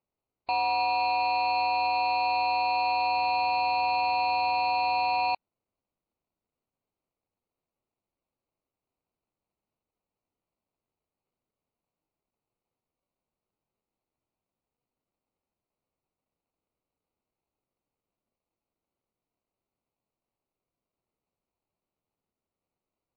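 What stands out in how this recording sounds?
aliases and images of a low sample rate 1.7 kHz, jitter 0%; MP3

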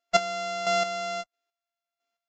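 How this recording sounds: a buzz of ramps at a fixed pitch in blocks of 64 samples; chopped level 1.5 Hz, depth 60%, duty 25%; Vorbis

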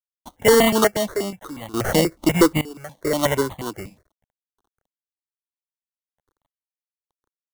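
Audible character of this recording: aliases and images of a low sample rate 2.5 kHz, jitter 0%; random-step tremolo 2.3 Hz, depth 90%; a quantiser's noise floor 12-bit, dither none; notches that jump at a steady rate 8.3 Hz 370–1500 Hz

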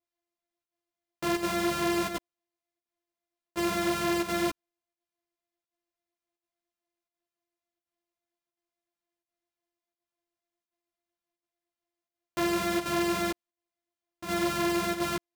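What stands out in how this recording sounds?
a buzz of ramps at a fixed pitch in blocks of 128 samples; chopped level 1.4 Hz, depth 60%, duty 90%; a shimmering, thickened sound

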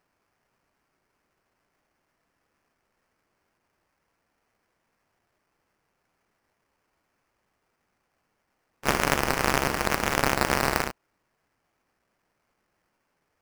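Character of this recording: aliases and images of a low sample rate 3.7 kHz, jitter 20%

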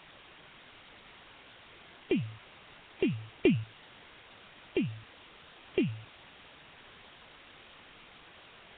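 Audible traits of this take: a buzz of ramps at a fixed pitch in blocks of 16 samples; tremolo saw up 1.1 Hz, depth 75%; a quantiser's noise floor 8-bit, dither triangular; Nellymoser

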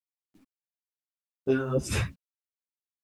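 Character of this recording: phasing stages 2, 2.9 Hz, lowest notch 230–1800 Hz; a quantiser's noise floor 12-bit, dither none; a shimmering, thickened sound

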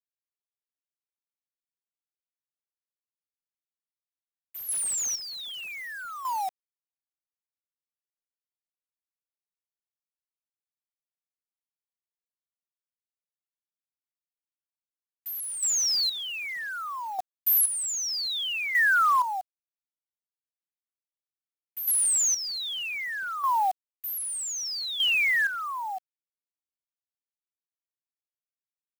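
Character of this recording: a quantiser's noise floor 8-bit, dither none; chopped level 0.64 Hz, depth 65%, duty 30%

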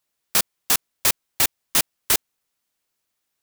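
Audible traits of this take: noise floor -78 dBFS; spectral tilt 0.0 dB/octave

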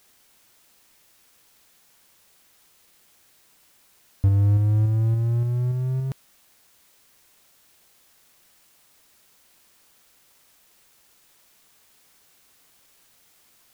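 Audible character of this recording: tremolo saw up 3.5 Hz, depth 30%; a quantiser's noise floor 10-bit, dither triangular

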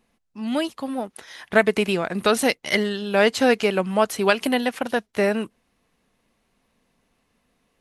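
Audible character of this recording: noise floor -70 dBFS; spectral tilt -3.0 dB/octave

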